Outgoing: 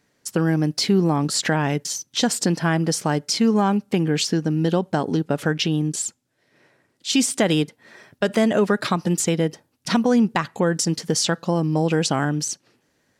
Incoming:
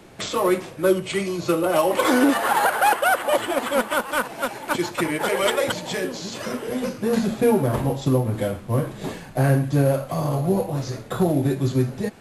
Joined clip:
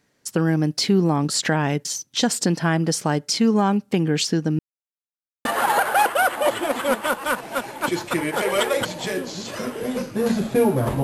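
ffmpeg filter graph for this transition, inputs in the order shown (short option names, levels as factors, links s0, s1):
-filter_complex "[0:a]apad=whole_dur=11.03,atrim=end=11.03,asplit=2[s0][s1];[s0]atrim=end=4.59,asetpts=PTS-STARTPTS,afade=t=out:st=4.586:d=0.004:c=hsin[s2];[s1]atrim=start=4.59:end=5.45,asetpts=PTS-STARTPTS,volume=0[s3];[1:a]atrim=start=2.32:end=7.9,asetpts=PTS-STARTPTS,afade=t=in:d=0.004:c=hsin[s4];[s2][s3][s4]concat=n=3:v=0:a=1"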